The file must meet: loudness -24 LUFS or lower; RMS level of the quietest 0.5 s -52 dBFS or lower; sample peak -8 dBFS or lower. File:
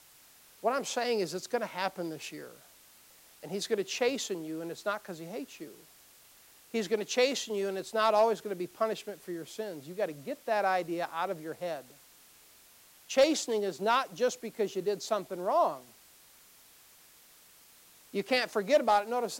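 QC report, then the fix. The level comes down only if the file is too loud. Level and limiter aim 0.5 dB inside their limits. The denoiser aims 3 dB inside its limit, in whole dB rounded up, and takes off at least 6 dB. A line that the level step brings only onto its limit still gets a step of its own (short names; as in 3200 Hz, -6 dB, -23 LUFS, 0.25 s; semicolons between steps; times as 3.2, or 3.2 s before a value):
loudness -31.5 LUFS: OK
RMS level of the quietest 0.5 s -59 dBFS: OK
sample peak -16.0 dBFS: OK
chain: none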